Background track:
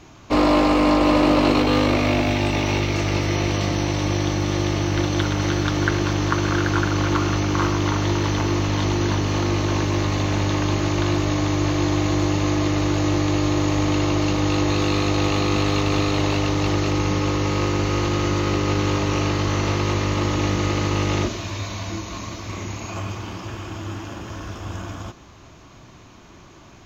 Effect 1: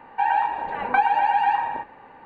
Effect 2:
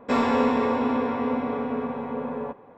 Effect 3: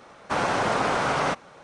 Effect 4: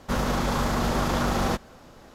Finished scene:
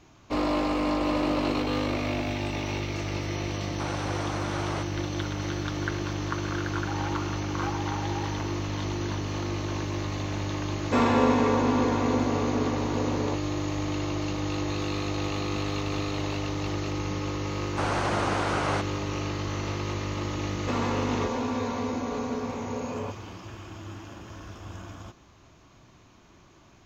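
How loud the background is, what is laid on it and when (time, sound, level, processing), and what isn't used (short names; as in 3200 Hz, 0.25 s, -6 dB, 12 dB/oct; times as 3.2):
background track -9.5 dB
3.49 add 3 -11 dB
6.69 add 1 -17.5 dB
10.83 add 2 -0.5 dB
17.47 add 3 -4.5 dB
20.59 add 2 -3 dB + limiter -18.5 dBFS
not used: 4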